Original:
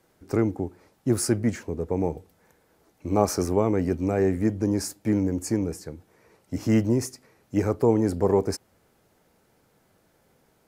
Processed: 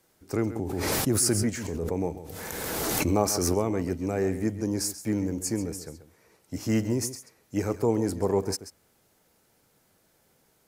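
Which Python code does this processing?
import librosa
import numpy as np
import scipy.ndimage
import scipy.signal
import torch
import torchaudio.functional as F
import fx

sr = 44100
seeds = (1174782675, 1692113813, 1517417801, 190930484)

y = fx.high_shelf(x, sr, hz=3000.0, db=9.0)
y = y + 10.0 ** (-13.0 / 20.0) * np.pad(y, (int(135 * sr / 1000.0), 0))[:len(y)]
y = fx.pre_swell(y, sr, db_per_s=21.0, at=(0.55, 3.53), fade=0.02)
y = y * 10.0 ** (-4.5 / 20.0)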